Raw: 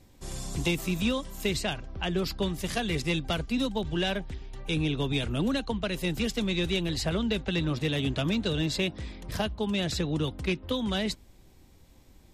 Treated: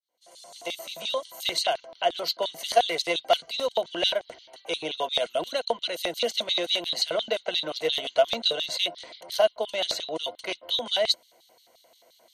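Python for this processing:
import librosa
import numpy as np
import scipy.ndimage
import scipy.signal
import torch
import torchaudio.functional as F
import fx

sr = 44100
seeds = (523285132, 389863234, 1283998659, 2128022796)

y = fx.fade_in_head(x, sr, length_s=1.55)
y = fx.ripple_eq(y, sr, per_octave=1.9, db=11)
y = fx.filter_lfo_highpass(y, sr, shape='square', hz=5.7, low_hz=610.0, high_hz=3700.0, q=5.8)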